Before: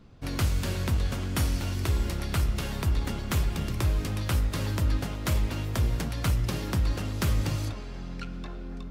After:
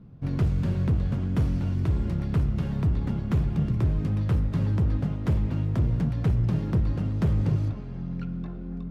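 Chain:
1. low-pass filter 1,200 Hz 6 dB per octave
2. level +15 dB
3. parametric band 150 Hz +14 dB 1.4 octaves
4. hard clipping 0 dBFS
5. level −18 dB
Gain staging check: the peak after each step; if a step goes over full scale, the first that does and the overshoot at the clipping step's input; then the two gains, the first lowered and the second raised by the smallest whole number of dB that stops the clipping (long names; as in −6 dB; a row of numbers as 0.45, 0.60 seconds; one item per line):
−17.5, −2.5, +8.5, 0.0, −18.0 dBFS
step 3, 8.5 dB
step 2 +6 dB, step 5 −9 dB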